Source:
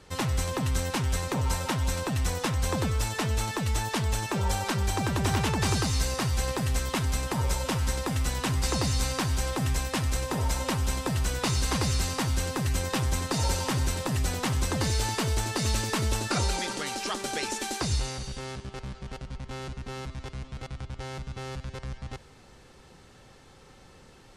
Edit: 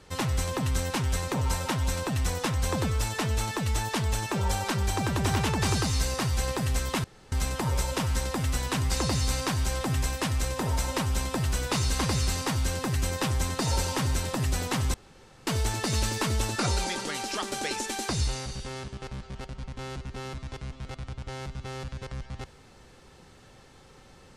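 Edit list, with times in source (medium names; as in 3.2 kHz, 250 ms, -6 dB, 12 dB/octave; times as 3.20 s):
7.04 s: insert room tone 0.28 s
14.66–15.19 s: room tone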